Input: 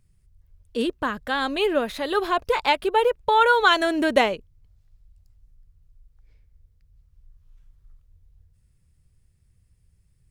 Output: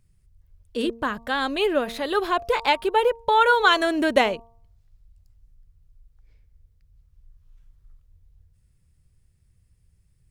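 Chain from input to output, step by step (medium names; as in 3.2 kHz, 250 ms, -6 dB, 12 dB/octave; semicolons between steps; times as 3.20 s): de-hum 230.3 Hz, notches 5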